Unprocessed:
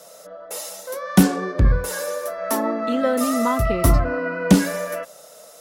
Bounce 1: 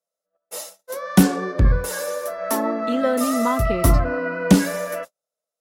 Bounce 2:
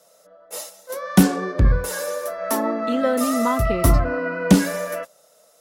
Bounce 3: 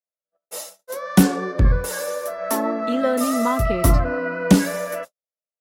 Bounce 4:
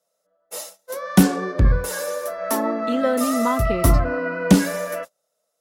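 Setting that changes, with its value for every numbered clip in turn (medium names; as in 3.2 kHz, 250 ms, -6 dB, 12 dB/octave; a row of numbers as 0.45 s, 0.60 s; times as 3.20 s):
gate, range: -43 dB, -11 dB, -58 dB, -30 dB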